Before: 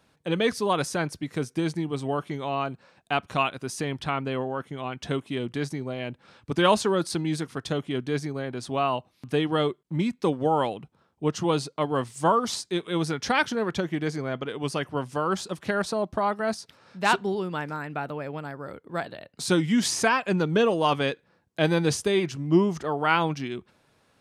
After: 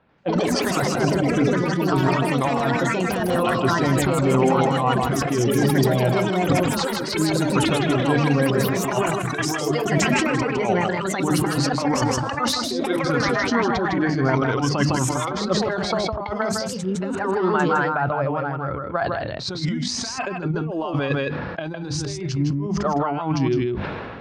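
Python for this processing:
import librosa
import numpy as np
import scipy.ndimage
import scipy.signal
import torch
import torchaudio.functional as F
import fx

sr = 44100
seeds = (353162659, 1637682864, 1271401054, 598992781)

y = fx.hum_notches(x, sr, base_hz=50, count=6)
y = fx.noise_reduce_blind(y, sr, reduce_db=10)
y = fx.env_lowpass(y, sr, base_hz=2500.0, full_db=-22.5)
y = fx.high_shelf(y, sr, hz=8300.0, db=-8.0)
y = fx.over_compress(y, sr, threshold_db=-32.0, ratio=-0.5)
y = fx.air_absorb(y, sr, metres=140.0)
y = fx.echo_pitch(y, sr, ms=90, semitones=5, count=3, db_per_echo=-3.0)
y = y + 10.0 ** (-5.5 / 20.0) * np.pad(y, (int(158 * sr / 1000.0), 0))[:len(y)]
y = fx.sustainer(y, sr, db_per_s=28.0)
y = y * librosa.db_to_amplitude(8.5)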